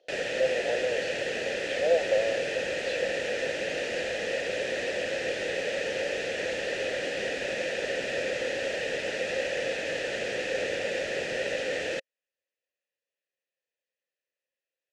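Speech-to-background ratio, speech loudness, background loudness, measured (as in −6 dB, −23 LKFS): −1.0 dB, −31.5 LKFS, −30.5 LKFS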